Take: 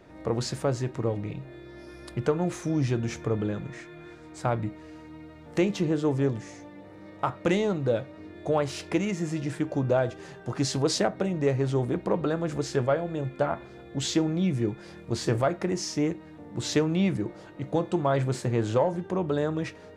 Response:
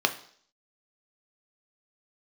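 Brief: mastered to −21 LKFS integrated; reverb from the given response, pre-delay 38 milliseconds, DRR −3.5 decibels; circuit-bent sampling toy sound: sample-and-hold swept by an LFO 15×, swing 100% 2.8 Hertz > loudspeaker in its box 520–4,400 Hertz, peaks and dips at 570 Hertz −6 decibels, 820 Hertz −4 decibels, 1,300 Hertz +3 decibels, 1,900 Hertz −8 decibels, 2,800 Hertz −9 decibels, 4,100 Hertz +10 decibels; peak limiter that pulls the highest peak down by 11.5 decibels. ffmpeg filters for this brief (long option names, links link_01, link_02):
-filter_complex "[0:a]alimiter=level_in=1dB:limit=-24dB:level=0:latency=1,volume=-1dB,asplit=2[link_01][link_02];[1:a]atrim=start_sample=2205,adelay=38[link_03];[link_02][link_03]afir=irnorm=-1:irlink=0,volume=-8.5dB[link_04];[link_01][link_04]amix=inputs=2:normalize=0,acrusher=samples=15:mix=1:aa=0.000001:lfo=1:lforange=15:lforate=2.8,highpass=520,equalizer=frequency=570:width_type=q:width=4:gain=-6,equalizer=frequency=820:width_type=q:width=4:gain=-4,equalizer=frequency=1300:width_type=q:width=4:gain=3,equalizer=frequency=1900:width_type=q:width=4:gain=-8,equalizer=frequency=2800:width_type=q:width=4:gain=-9,equalizer=frequency=4100:width_type=q:width=4:gain=10,lowpass=frequency=4400:width=0.5412,lowpass=frequency=4400:width=1.3066,volume=16dB"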